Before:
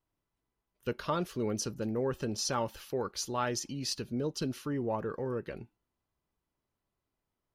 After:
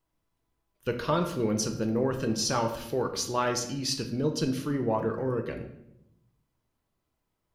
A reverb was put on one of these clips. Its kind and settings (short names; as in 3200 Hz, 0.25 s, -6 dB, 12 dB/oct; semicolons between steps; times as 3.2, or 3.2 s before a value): shoebox room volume 220 m³, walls mixed, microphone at 0.61 m; gain +4 dB